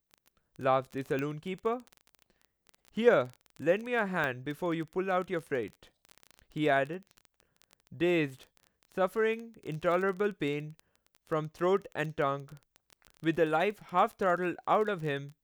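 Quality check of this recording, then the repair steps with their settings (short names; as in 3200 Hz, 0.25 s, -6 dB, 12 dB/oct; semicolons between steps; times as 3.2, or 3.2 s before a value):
crackle 21/s -36 dBFS
1.19 pop -22 dBFS
4.24 pop -20 dBFS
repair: de-click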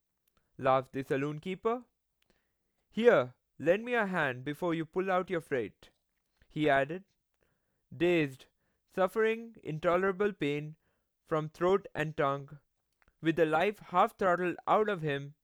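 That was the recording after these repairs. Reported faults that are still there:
none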